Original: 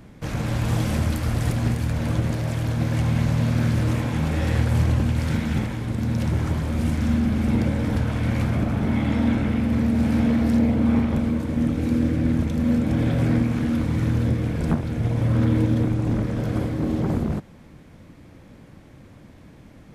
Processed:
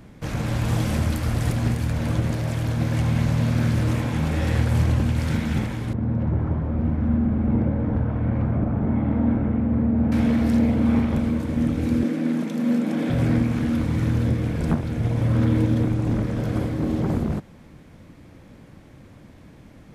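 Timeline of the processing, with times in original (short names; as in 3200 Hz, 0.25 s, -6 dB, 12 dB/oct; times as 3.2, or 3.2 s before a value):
5.93–10.12 LPF 1100 Hz
12.03–13.1 steep high-pass 170 Hz 48 dB/oct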